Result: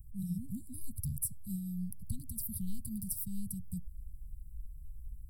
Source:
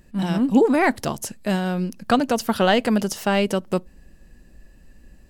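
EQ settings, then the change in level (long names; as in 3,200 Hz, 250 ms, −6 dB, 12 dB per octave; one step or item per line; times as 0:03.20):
inverse Chebyshev band-stop filter 450–2,500 Hz, stop band 70 dB
phaser with its sweep stopped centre 1,900 Hz, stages 6
+4.0 dB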